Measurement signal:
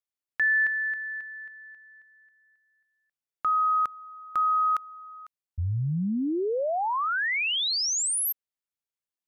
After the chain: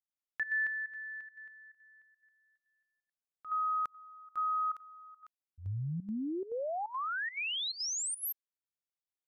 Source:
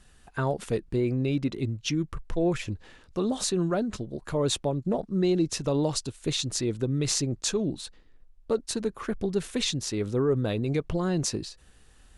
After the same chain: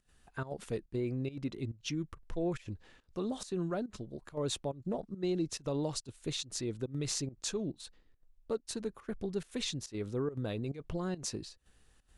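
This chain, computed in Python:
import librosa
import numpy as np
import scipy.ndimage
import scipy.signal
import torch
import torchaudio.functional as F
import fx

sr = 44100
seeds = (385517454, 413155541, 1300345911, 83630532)

y = fx.volume_shaper(x, sr, bpm=140, per_beat=1, depth_db=-16, release_ms=84.0, shape='slow start')
y = F.gain(torch.from_numpy(y), -8.5).numpy()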